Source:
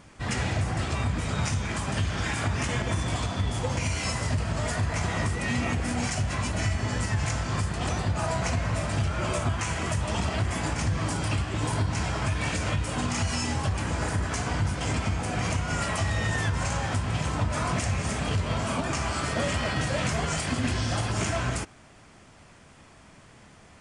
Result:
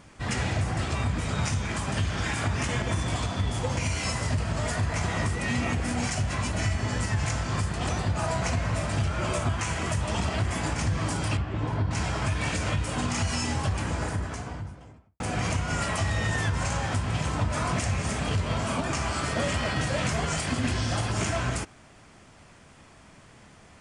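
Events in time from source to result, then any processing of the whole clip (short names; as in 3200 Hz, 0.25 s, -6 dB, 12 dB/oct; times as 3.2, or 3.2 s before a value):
11.37–11.91 tape spacing loss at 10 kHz 26 dB
13.71–15.2 studio fade out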